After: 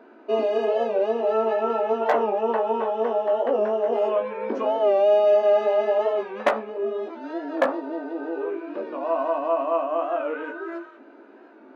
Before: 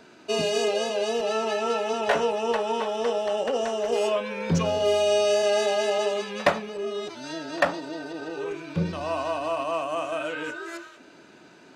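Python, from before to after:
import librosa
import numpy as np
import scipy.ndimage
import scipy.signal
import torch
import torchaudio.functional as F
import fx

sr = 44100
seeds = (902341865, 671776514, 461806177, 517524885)

y = scipy.signal.sosfilt(scipy.signal.butter(2, 1200.0, 'lowpass', fs=sr, output='sos'), x)
y = 10.0 ** (-12.5 / 20.0) * (np.abs((y / 10.0 ** (-12.5 / 20.0) + 3.0) % 4.0 - 2.0) - 1.0)
y = fx.brickwall_highpass(y, sr, low_hz=220.0)
y = fx.doubler(y, sr, ms=18.0, db=-5)
y = fx.record_warp(y, sr, rpm=45.0, depth_cents=100.0)
y = y * librosa.db_to_amplitude(3.0)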